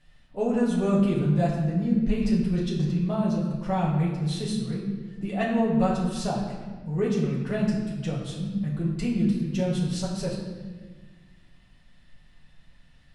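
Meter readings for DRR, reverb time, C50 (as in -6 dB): -6.0 dB, 1.4 s, 3.0 dB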